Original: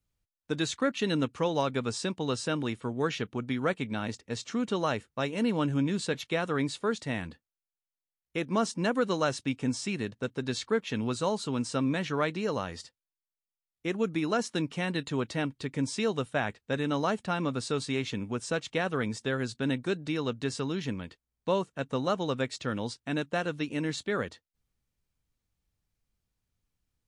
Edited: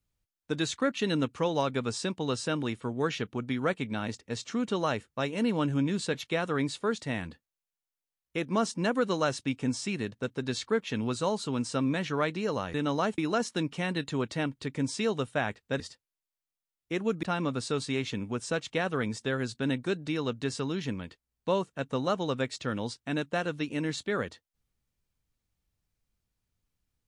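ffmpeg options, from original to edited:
ffmpeg -i in.wav -filter_complex "[0:a]asplit=5[link_01][link_02][link_03][link_04][link_05];[link_01]atrim=end=12.742[link_06];[link_02]atrim=start=16.788:end=17.232[link_07];[link_03]atrim=start=14.168:end=16.792[link_08];[link_04]atrim=start=12.738:end=14.172[link_09];[link_05]atrim=start=17.228[link_10];[link_06][link_07]acrossfade=duration=0.004:curve1=hsin:curve2=hsin[link_11];[link_11][link_08]acrossfade=duration=0.004:curve1=hsin:curve2=hsin[link_12];[link_12][link_09]acrossfade=duration=0.004:curve1=hsin:curve2=hsin[link_13];[link_13][link_10]acrossfade=duration=0.004:curve1=hsin:curve2=hsin" out.wav

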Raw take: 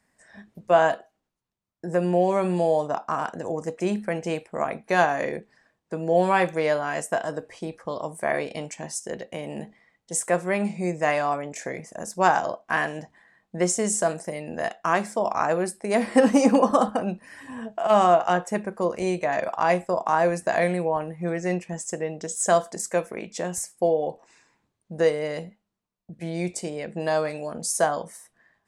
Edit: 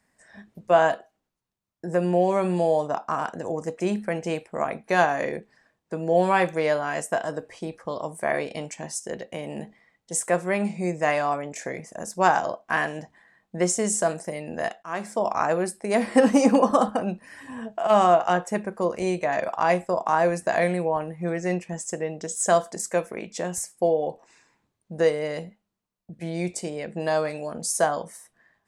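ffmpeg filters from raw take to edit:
ffmpeg -i in.wav -filter_complex "[0:a]asplit=2[link_01][link_02];[link_01]atrim=end=14.83,asetpts=PTS-STARTPTS,afade=type=out:start_time=14.826:duration=0.004:curve=hsin:silence=0.0944061[link_03];[link_02]atrim=start=14.83,asetpts=PTS-STARTPTS,afade=type=in:duration=0.35:silence=0.0944061[link_04];[link_03][link_04]concat=n=2:v=0:a=1" out.wav

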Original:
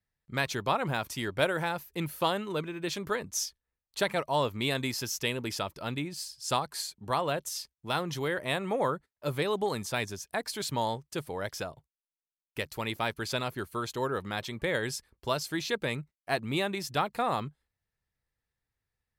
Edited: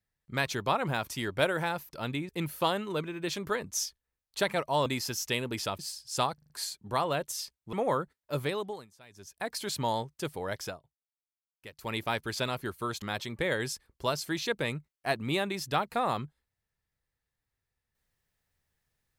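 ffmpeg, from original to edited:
ffmpeg -i in.wav -filter_complex "[0:a]asplit=15[link_01][link_02][link_03][link_04][link_05][link_06][link_07][link_08][link_09][link_10][link_11][link_12][link_13][link_14][link_15];[link_01]atrim=end=1.892[link_16];[link_02]atrim=start=5.718:end=6.122[link_17];[link_03]atrim=start=1.888:end=4.462[link_18];[link_04]atrim=start=4.788:end=5.722[link_19];[link_05]atrim=start=6.118:end=6.712[link_20];[link_06]atrim=start=6.668:end=6.712[link_21];[link_07]atrim=start=6.668:end=6.712[link_22];[link_08]atrim=start=6.668:end=6.712[link_23];[link_09]atrim=start=6.668:end=7.902[link_24];[link_10]atrim=start=8.658:end=9.8,asetpts=PTS-STARTPTS,afade=type=out:start_time=0.662:duration=0.48:silence=0.0668344[link_25];[link_11]atrim=start=9.8:end=10.03,asetpts=PTS-STARTPTS,volume=-23.5dB[link_26];[link_12]atrim=start=10.03:end=11.73,asetpts=PTS-STARTPTS,afade=type=in:duration=0.48:silence=0.0668344,afade=type=out:start_time=1.49:duration=0.21:curve=qsin:silence=0.223872[link_27];[link_13]atrim=start=11.73:end=12.69,asetpts=PTS-STARTPTS,volume=-13dB[link_28];[link_14]atrim=start=12.69:end=13.952,asetpts=PTS-STARTPTS,afade=type=in:duration=0.21:curve=qsin:silence=0.223872[link_29];[link_15]atrim=start=14.248[link_30];[link_16][link_17]acrossfade=duration=0.004:curve1=hsin:curve2=hsin[link_31];[link_31][link_18]acrossfade=duration=0.004:curve1=hsin:curve2=hsin[link_32];[link_32][link_19]acrossfade=duration=0.004:curve1=hsin:curve2=hsin[link_33];[link_33][link_20]acrossfade=duration=0.004:curve1=hsin:curve2=hsin[link_34];[link_34][link_21]acrossfade=duration=0.004:curve1=hsin:curve2=hsin[link_35];[link_35][link_22]acrossfade=duration=0.004:curve1=hsin:curve2=hsin[link_36];[link_36][link_23]acrossfade=duration=0.004:curve1=hsin:curve2=hsin[link_37];[link_37][link_24]acrossfade=duration=0.004:curve1=hsin:curve2=hsin[link_38];[link_25][link_26][link_27][link_28][link_29]concat=n=5:v=0:a=1[link_39];[link_38][link_39]acrossfade=duration=0.004:curve1=hsin:curve2=hsin[link_40];[link_40][link_30]acrossfade=duration=0.004:curve1=hsin:curve2=hsin" out.wav

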